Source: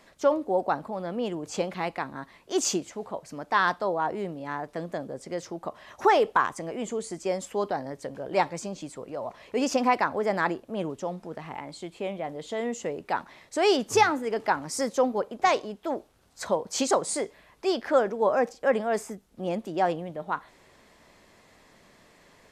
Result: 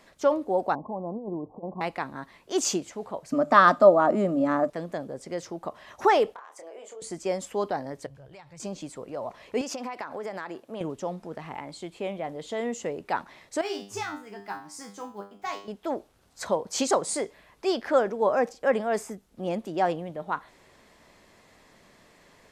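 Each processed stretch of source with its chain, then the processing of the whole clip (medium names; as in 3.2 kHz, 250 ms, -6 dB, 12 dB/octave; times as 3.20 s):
0.75–1.81 s: compressor with a negative ratio -31 dBFS, ratio -0.5 + rippled Chebyshev low-pass 1.1 kHz, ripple 3 dB
3.32–4.70 s: peaking EQ 7.3 kHz +10 dB 0.23 oct + hum notches 50/100/150 Hz + small resonant body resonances 260/590/1200 Hz, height 18 dB
6.34–7.02 s: ladder high-pass 430 Hz, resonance 40% + compression 16:1, threshold -40 dBFS + doubling 27 ms -5.5 dB
8.06–8.60 s: FFT filter 140 Hz 0 dB, 220 Hz -20 dB, 2.8 kHz -9 dB + compression 16:1, threshold -43 dBFS
9.61–10.81 s: bass shelf 230 Hz -9 dB + compression 16:1, threshold -30 dBFS + high-pass 87 Hz
13.61–15.68 s: block-companded coder 7-bit + peaking EQ 530 Hz -14.5 dB 0.29 oct + feedback comb 100 Hz, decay 0.37 s, mix 90%
whole clip: none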